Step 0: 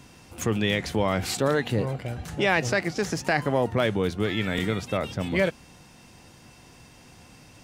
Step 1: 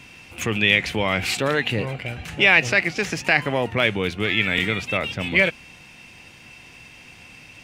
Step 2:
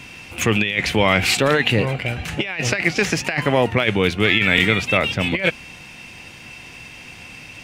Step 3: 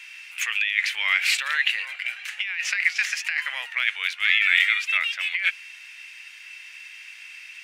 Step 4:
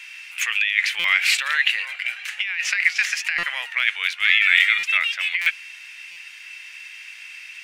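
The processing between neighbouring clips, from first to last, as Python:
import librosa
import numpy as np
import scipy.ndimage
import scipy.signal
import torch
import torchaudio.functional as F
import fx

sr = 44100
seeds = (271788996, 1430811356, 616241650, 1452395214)

y1 = fx.peak_eq(x, sr, hz=2500.0, db=15.0, octaves=0.93)
y2 = fx.over_compress(y1, sr, threshold_db=-21.0, ratio=-0.5)
y2 = F.gain(torch.from_numpy(y2), 4.5).numpy()
y3 = fx.ladder_highpass(y2, sr, hz=1500.0, resonance_pct=40)
y3 = F.gain(torch.from_numpy(y3), 2.5).numpy()
y4 = fx.buffer_glitch(y3, sr, at_s=(0.99, 3.38, 4.78, 5.41, 6.11), block=256, repeats=8)
y4 = F.gain(torch.from_numpy(y4), 3.0).numpy()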